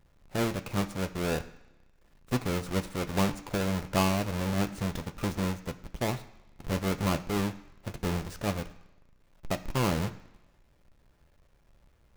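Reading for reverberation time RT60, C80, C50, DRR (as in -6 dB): 1.1 s, 17.5 dB, 15.0 dB, 7.0 dB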